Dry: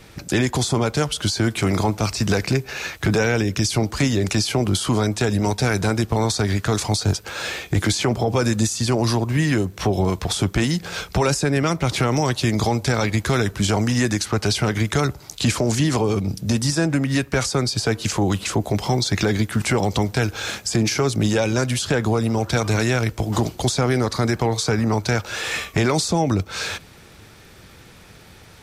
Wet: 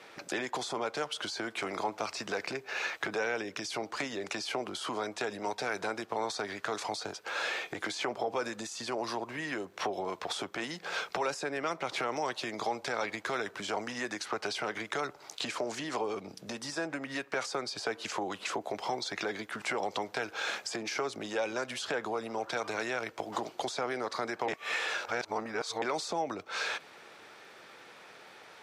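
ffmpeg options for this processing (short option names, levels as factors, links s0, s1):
-filter_complex "[0:a]asplit=3[s0][s1][s2];[s0]atrim=end=24.482[s3];[s1]atrim=start=24.478:end=25.822,asetpts=PTS-STARTPTS,areverse[s4];[s2]atrim=start=25.818[s5];[s3][s4]acrossfade=d=0.004:c1=hsin:c2=hsin[s6];[s6][s5]acrossfade=d=0.004:c1=hsin:c2=hsin,acompressor=threshold=0.0447:ratio=2.5,highpass=530,aemphasis=mode=reproduction:type=75kf"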